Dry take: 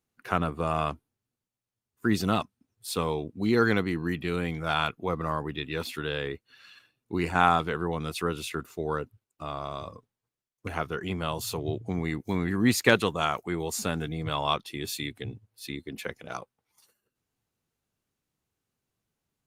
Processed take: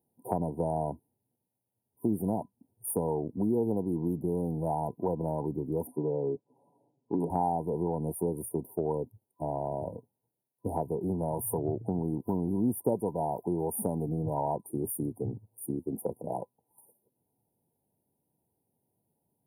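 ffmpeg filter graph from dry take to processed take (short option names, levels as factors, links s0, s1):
-filter_complex "[0:a]asettb=1/sr,asplit=3[s0][s1][s2];[s0]atrim=end=5.874[s3];[s1]atrim=start=5.87:end=7.3,asetpts=PTS-STARTPTS,afade=t=in:d=0.004:c=qsin,afade=t=out:st=1.426:d=0.004:c=qsin,aecho=1:1:7.1:0.42,atrim=end_sample=63063,aeval=exprs='(mod(7.08*val(0)+1,2)-1)/7.08':c=same,highpass=150,lowpass=4300[s4];[s2]atrim=start=7.296[s5];[s3][s4]acrossfade=d=0.004:c1=hsin:c2=qsin[s6];[s6][s5]acrossfade=d=0.004:c1=qsin:c2=hsin,afftfilt=real='re*(1-between(b*sr/4096,1000,8900))':imag='im*(1-between(b*sr/4096,1000,8900))':win_size=4096:overlap=0.75,acompressor=threshold=0.0178:ratio=3,highpass=110,volume=2.24"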